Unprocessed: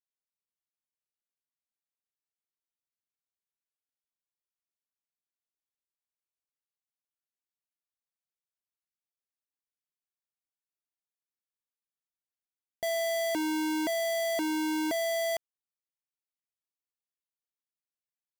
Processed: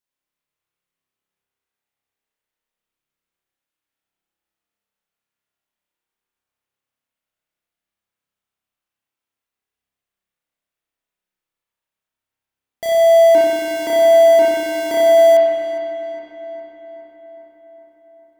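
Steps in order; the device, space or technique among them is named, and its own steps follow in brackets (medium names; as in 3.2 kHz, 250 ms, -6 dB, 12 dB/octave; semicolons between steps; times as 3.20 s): dub delay into a spring reverb (filtered feedback delay 410 ms, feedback 66%, low-pass 3.3 kHz, level -11.5 dB; spring tank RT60 2 s, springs 30 ms, chirp 70 ms, DRR -6.5 dB); trim +5.5 dB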